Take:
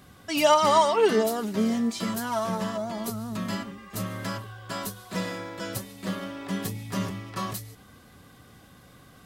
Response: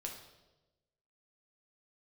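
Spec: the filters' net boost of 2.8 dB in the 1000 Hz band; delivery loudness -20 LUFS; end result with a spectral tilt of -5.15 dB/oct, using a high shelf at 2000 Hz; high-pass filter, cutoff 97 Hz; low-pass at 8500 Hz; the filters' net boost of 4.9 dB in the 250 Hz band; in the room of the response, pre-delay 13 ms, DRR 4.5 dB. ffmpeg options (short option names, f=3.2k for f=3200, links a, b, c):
-filter_complex "[0:a]highpass=97,lowpass=8.5k,equalizer=f=250:t=o:g=6,equalizer=f=1k:t=o:g=4,highshelf=f=2k:g=-5,asplit=2[a][b];[1:a]atrim=start_sample=2205,adelay=13[c];[b][c]afir=irnorm=-1:irlink=0,volume=-3dB[d];[a][d]amix=inputs=2:normalize=0,volume=3dB"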